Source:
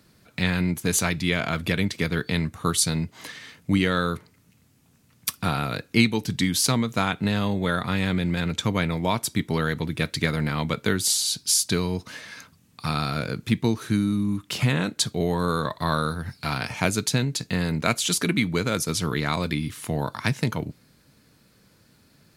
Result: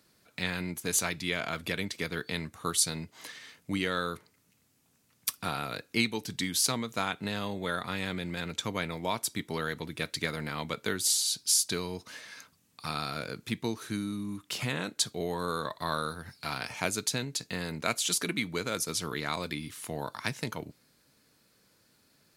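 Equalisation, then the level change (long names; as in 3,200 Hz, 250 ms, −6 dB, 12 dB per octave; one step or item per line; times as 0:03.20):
bass and treble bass −8 dB, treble +3 dB
−6.5 dB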